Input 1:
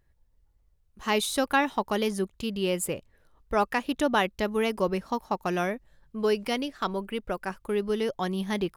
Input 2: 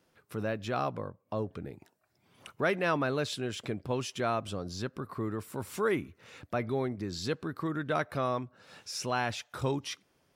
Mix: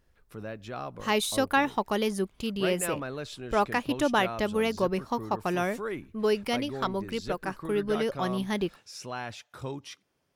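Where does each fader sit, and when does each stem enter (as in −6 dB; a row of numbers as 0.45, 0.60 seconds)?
−0.5, −5.5 decibels; 0.00, 0.00 seconds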